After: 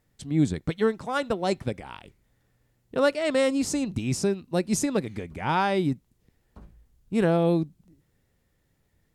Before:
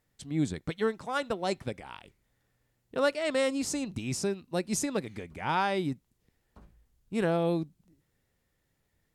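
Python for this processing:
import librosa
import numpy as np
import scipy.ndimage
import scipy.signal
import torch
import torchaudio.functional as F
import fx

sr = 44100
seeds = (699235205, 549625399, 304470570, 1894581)

y = fx.low_shelf(x, sr, hz=490.0, db=5.0)
y = F.gain(torch.from_numpy(y), 2.5).numpy()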